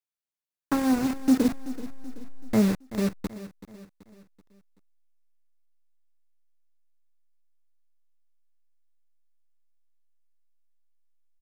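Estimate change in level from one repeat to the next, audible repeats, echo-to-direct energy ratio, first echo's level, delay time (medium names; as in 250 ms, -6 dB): -7.0 dB, 3, -14.0 dB, -15.0 dB, 381 ms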